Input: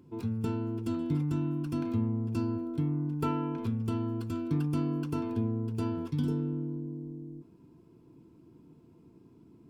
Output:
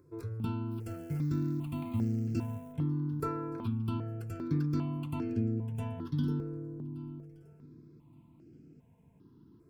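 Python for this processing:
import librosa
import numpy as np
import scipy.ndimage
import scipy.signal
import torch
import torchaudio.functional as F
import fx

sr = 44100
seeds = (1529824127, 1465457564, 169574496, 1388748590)

y = fx.quant_float(x, sr, bits=4, at=(0.7, 2.72), fade=0.02)
y = fx.echo_feedback(y, sr, ms=1173, feedback_pct=23, wet_db=-21)
y = fx.phaser_held(y, sr, hz=2.5, low_hz=820.0, high_hz=3600.0)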